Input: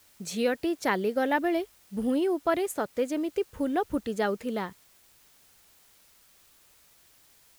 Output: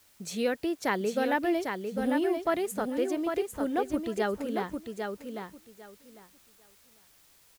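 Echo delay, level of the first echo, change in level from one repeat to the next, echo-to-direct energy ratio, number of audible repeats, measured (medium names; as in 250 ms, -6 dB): 800 ms, -5.5 dB, -15.0 dB, -5.5 dB, 2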